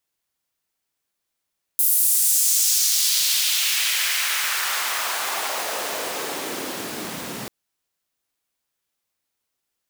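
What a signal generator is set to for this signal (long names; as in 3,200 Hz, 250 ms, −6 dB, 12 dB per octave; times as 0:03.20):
filter sweep on noise pink, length 5.69 s highpass, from 12,000 Hz, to 160 Hz, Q 1.4, exponential, gain ramp −21.5 dB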